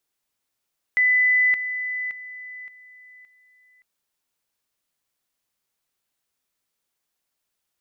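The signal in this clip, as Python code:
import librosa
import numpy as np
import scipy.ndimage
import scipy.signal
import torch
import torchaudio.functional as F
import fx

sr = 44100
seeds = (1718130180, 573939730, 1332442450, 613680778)

y = fx.level_ladder(sr, hz=2000.0, from_db=-15.0, step_db=-10.0, steps=5, dwell_s=0.57, gap_s=0.0)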